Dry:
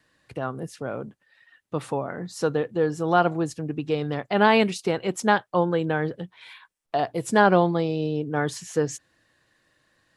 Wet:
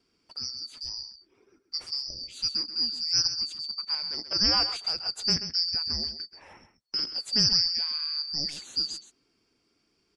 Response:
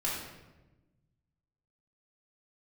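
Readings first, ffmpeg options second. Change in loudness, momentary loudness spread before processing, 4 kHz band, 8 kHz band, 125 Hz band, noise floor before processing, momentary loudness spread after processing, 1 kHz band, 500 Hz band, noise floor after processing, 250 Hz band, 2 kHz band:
−2.0 dB, 15 LU, +13.5 dB, +3.5 dB, −14.0 dB, −71 dBFS, 14 LU, −19.0 dB, −24.0 dB, −73 dBFS, −16.0 dB, −15.5 dB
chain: -filter_complex "[0:a]afftfilt=real='real(if(lt(b,272),68*(eq(floor(b/68),0)*1+eq(floor(b/68),1)*2+eq(floor(b/68),2)*3+eq(floor(b/68),3)*0)+mod(b,68),b),0)':imag='imag(if(lt(b,272),68*(eq(floor(b/68),0)*1+eq(floor(b/68),1)*2+eq(floor(b/68),2)*3+eq(floor(b/68),3)*0)+mod(b,68),b),0)':win_size=2048:overlap=0.75,lowpass=8400,asplit=2[link_01][link_02];[link_02]aecho=0:1:132:0.282[link_03];[link_01][link_03]amix=inputs=2:normalize=0,volume=-5.5dB"

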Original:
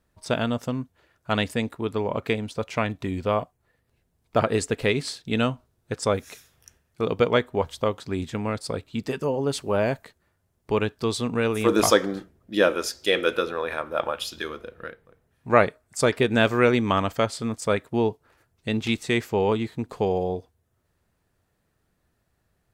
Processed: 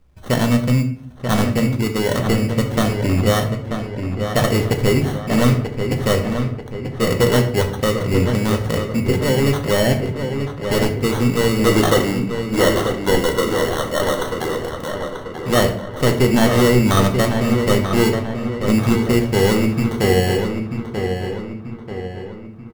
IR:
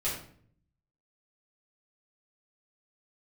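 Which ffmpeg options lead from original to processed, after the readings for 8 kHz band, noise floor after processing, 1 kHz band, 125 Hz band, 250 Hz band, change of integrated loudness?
+7.0 dB, −33 dBFS, +4.5 dB, +13.0 dB, +9.5 dB, +6.5 dB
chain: -filter_complex "[0:a]lowshelf=frequency=200:gain=9,acrossover=split=6200[link_01][link_02];[link_02]acompressor=threshold=-57dB:ratio=6[link_03];[link_01][link_03]amix=inputs=2:normalize=0,acrusher=samples=18:mix=1:aa=0.000001,asoftclip=type=tanh:threshold=-15.5dB,asplit=2[link_04][link_05];[link_05]adelay=937,lowpass=frequency=3100:poles=1,volume=-6.5dB,asplit=2[link_06][link_07];[link_07]adelay=937,lowpass=frequency=3100:poles=1,volume=0.5,asplit=2[link_08][link_09];[link_09]adelay=937,lowpass=frequency=3100:poles=1,volume=0.5,asplit=2[link_10][link_11];[link_11]adelay=937,lowpass=frequency=3100:poles=1,volume=0.5,asplit=2[link_12][link_13];[link_13]adelay=937,lowpass=frequency=3100:poles=1,volume=0.5,asplit=2[link_14][link_15];[link_15]adelay=937,lowpass=frequency=3100:poles=1,volume=0.5[link_16];[link_04][link_06][link_08][link_10][link_12][link_14][link_16]amix=inputs=7:normalize=0,asplit=2[link_17][link_18];[1:a]atrim=start_sample=2205[link_19];[link_18][link_19]afir=irnorm=-1:irlink=0,volume=-7.5dB[link_20];[link_17][link_20]amix=inputs=2:normalize=0,volume=3dB"

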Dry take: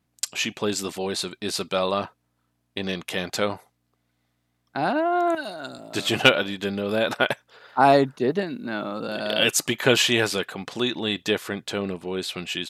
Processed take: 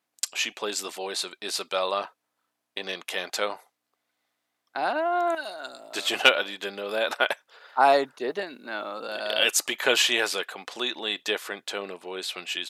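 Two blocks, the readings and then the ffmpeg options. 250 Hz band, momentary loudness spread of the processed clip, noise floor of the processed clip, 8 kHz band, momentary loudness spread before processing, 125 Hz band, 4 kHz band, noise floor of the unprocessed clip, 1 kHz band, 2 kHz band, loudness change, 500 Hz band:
−11.5 dB, 14 LU, −81 dBFS, −1.0 dB, 12 LU, below −20 dB, −1.0 dB, −73 dBFS, −1.5 dB, −1.0 dB, −2.5 dB, −4.0 dB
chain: -af "highpass=510,volume=-1dB"

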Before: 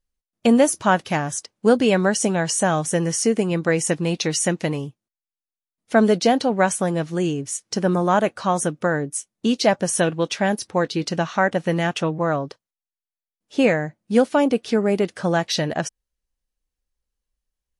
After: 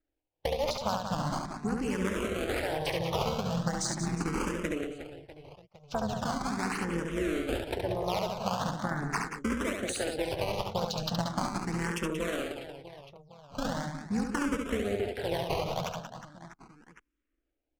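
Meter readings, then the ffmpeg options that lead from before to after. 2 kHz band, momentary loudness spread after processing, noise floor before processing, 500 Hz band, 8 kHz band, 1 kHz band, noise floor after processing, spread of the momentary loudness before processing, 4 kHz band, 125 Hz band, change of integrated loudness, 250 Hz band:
−11.0 dB, 11 LU, below −85 dBFS, −12.5 dB, −14.5 dB, −10.0 dB, −83 dBFS, 8 LU, −8.5 dB, −9.5 dB, −11.5 dB, −12.0 dB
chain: -filter_complex "[0:a]highshelf=frequency=4100:gain=7.5,acompressor=threshold=-23dB:ratio=6,tremolo=f=300:d=0.857,acrusher=samples=14:mix=1:aa=0.000001:lfo=1:lforange=22.4:lforate=0.98,aecho=1:1:70|182|361.2|647.9|1107:0.631|0.398|0.251|0.158|0.1,adynamicsmooth=sensitivity=6.5:basefreq=5200,asplit=2[link_01][link_02];[link_02]afreqshift=0.4[link_03];[link_01][link_03]amix=inputs=2:normalize=1"

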